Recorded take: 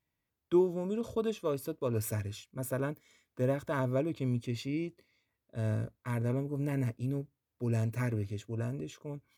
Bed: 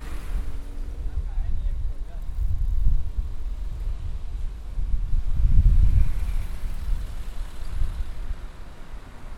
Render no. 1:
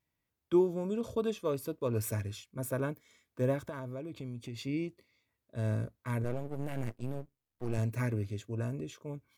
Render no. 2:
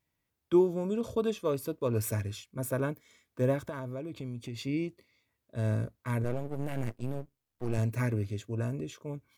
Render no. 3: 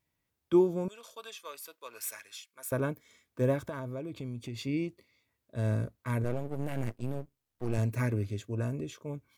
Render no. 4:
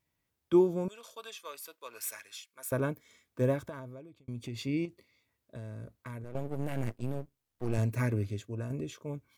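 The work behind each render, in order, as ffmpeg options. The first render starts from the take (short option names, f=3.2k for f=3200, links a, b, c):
-filter_complex "[0:a]asettb=1/sr,asplit=3[a][b][c];[a]atrim=end=3.694[d];[b]atrim=start=3.69:end=4.61,asetpts=PTS-STARTPTS,afade=t=in:d=0.004:c=qsin,afade=t=out:st=0.916:d=0.004:c=qsin,acompressor=threshold=-38dB:ratio=5:attack=3.2:release=140:knee=1:detection=peak[e];[c]atrim=start=4.606[f];[d][e]acrossfade=d=0.004:c1=hsin:c2=qsin[g];[g][f]acrossfade=d=0.004:c1=qsin:c2=hsin,asettb=1/sr,asplit=3[h][i][j];[h]atrim=end=6.244[k];[i]atrim=start=6.24:end=7.78,asetpts=PTS-STARTPTS,afade=t=in:d=0.004:c=qsin,afade=t=out:st=1.536:d=0.004:c=qsin,aeval=exprs='max(val(0),0)':c=same[l];[j]atrim=start=7.776[m];[k][l]acrossfade=d=0.004:c1=hsin:c2=qsin[n];[n][m]acrossfade=d=0.004:c1=qsin:c2=hsin"
-af "volume=2.5dB"
-filter_complex "[0:a]asettb=1/sr,asplit=3[a][b][c];[a]atrim=end=0.884[d];[b]atrim=start=0.88:end=2.72,asetpts=PTS-STARTPTS,afade=t=in:d=0.004:c=qsin,afade=t=out:st=1.836:d=0.004:c=qsin,highpass=1.4k[e];[c]atrim=start=2.716[f];[d][e]acrossfade=d=0.004:c1=hsin:c2=qsin[g];[g][f]acrossfade=d=0.004:c1=qsin:c2=hsin"
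-filter_complex "[0:a]asettb=1/sr,asplit=3[a][b][c];[a]atrim=end=4.854[d];[b]atrim=start=4.85:end=6.35,asetpts=PTS-STARTPTS,afade=t=in:d=0.004:c=qsin,afade=t=out:st=1.496:d=0.004:c=qsin,acompressor=threshold=-39dB:ratio=6:attack=3.2:release=140:knee=1:detection=peak[e];[c]atrim=start=6.346[f];[d][e]acrossfade=d=0.004:c1=hsin:c2=qsin[g];[g][f]acrossfade=d=0.004:c1=qsin:c2=hsin,asplit=3[h][i][j];[h]atrim=end=4.28,asetpts=PTS-STARTPTS,afade=t=out:st=3.42:d=0.86[k];[i]atrim=start=4.28:end=8.7,asetpts=PTS-STARTPTS,afade=t=in:d=0.004:c=hsin,afade=t=out:st=3.99:d=0.43:silence=0.473151[l];[j]atrim=start=8.7,asetpts=PTS-STARTPTS,afade=t=in:d=0.004:c=hsin:silence=0.473151[m];[k][l][m]concat=n=3:v=0:a=1"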